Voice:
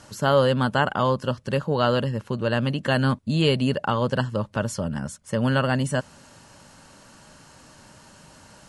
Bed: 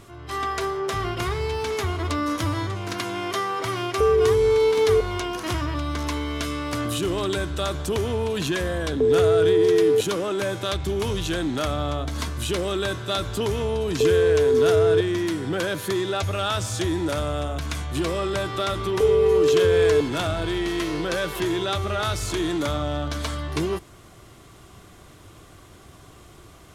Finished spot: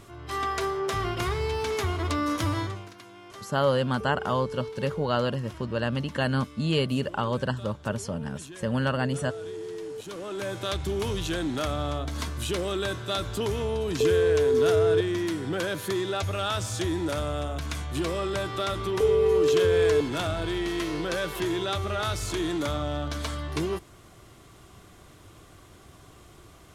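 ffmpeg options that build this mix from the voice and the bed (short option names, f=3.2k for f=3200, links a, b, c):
-filter_complex "[0:a]adelay=3300,volume=-4.5dB[a];[1:a]volume=13.5dB,afade=t=out:st=2.59:d=0.33:silence=0.141254,afade=t=in:st=9.98:d=0.73:silence=0.16788[b];[a][b]amix=inputs=2:normalize=0"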